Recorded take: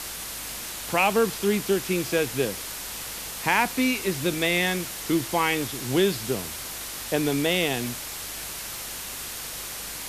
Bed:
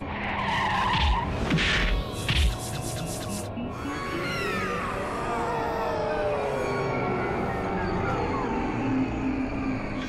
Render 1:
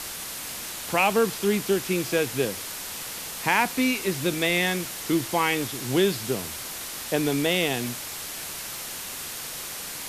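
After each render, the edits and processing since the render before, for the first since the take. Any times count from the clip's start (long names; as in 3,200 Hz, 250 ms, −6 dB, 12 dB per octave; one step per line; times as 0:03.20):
hum removal 50 Hz, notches 2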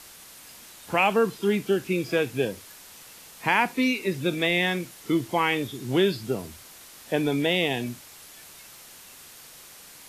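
noise reduction from a noise print 12 dB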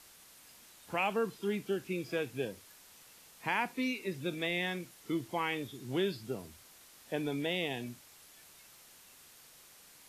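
level −10.5 dB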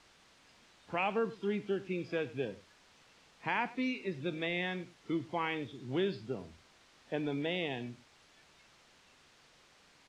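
high-frequency loss of the air 130 metres
single-tap delay 97 ms −18.5 dB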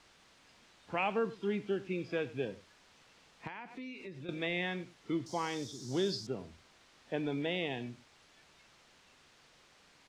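0:03.47–0:04.29: downward compressor 4 to 1, threshold −43 dBFS
0:05.26–0:06.27: high shelf with overshoot 3,800 Hz +13.5 dB, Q 3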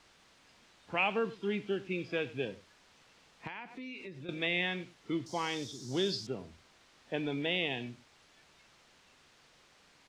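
dynamic equaliser 2,900 Hz, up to +7 dB, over −54 dBFS, Q 1.4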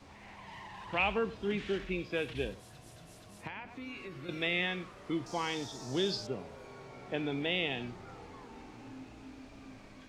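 mix in bed −22.5 dB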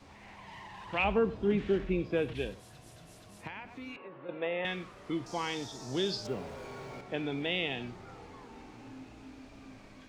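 0:01.04–0:02.34: tilt shelving filter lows +6.5 dB, about 1,300 Hz
0:03.96–0:04.65: loudspeaker in its box 240–2,400 Hz, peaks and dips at 250 Hz −4 dB, 370 Hz −4 dB, 530 Hz +9 dB, 920 Hz +9 dB, 1,400 Hz −3 dB, 2,200 Hz −9 dB
0:06.25–0:07.01: mu-law and A-law mismatch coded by mu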